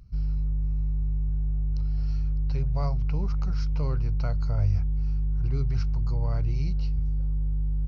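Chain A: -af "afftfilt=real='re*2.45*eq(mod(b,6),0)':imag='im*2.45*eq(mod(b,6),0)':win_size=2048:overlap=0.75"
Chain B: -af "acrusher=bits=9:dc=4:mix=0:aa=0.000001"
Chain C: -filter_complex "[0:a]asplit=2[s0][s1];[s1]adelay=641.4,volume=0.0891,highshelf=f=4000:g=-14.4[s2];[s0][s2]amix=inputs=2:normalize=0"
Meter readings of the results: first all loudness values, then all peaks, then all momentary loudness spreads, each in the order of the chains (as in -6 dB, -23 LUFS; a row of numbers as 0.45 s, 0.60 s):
-33.5 LUFS, -28.5 LUFS, -28.0 LUFS; -19.5 dBFS, -13.5 dBFS, -13.5 dBFS; 18 LU, 2 LU, 2 LU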